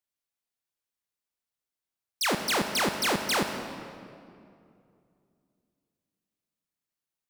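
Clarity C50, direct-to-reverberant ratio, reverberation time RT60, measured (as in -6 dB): 6.5 dB, 6.0 dB, 2.5 s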